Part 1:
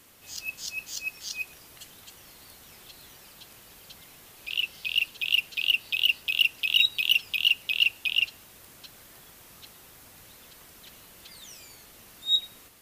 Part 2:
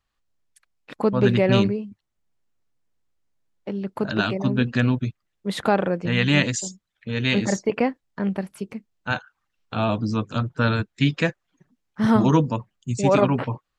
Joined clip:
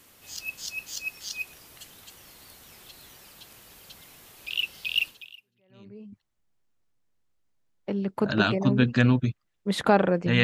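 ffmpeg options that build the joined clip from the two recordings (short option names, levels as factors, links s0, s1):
-filter_complex "[0:a]apad=whole_dur=10.43,atrim=end=10.43,atrim=end=6.16,asetpts=PTS-STARTPTS[s0];[1:a]atrim=start=0.87:end=6.22,asetpts=PTS-STARTPTS[s1];[s0][s1]acrossfade=d=1.08:c1=exp:c2=exp"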